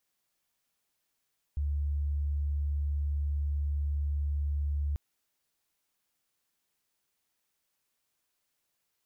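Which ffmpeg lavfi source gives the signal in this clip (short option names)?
-f lavfi -i "sine=f=72.4:d=3.39:r=44100,volume=-9.44dB"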